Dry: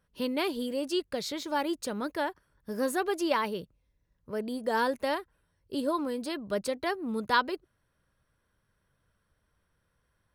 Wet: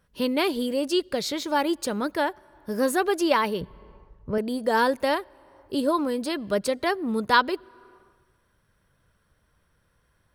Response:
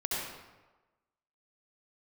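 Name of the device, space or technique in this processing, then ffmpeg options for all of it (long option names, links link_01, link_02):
ducked reverb: -filter_complex "[0:a]asettb=1/sr,asplit=3[link_01][link_02][link_03];[link_01]atrim=end=3.614[link_04];[link_02]atrim=start=3.61:end=4.38,asetpts=PTS-STARTPTS,afade=type=in:duration=0.004:curve=qsin,afade=type=out:start_time=0.766:duration=0.004:curve=qsin,aemphasis=mode=reproduction:type=bsi[link_05];[link_03]atrim=start=4.376[link_06];[link_04][link_05]acrossfade=duration=0.004:curve1=hsin:curve2=qsin[link_07];[link_07][link_06]acrossfade=duration=0.004:curve1=qsin:curve2=hsin,asplit=3[link_08][link_09][link_10];[1:a]atrim=start_sample=2205[link_11];[link_09][link_11]afir=irnorm=-1:irlink=0[link_12];[link_10]apad=whole_len=456299[link_13];[link_12][link_13]sidechaincompress=threshold=-51dB:ratio=5:attack=5.2:release=254,volume=-17.5dB[link_14];[link_08][link_14]amix=inputs=2:normalize=0,volume=6dB"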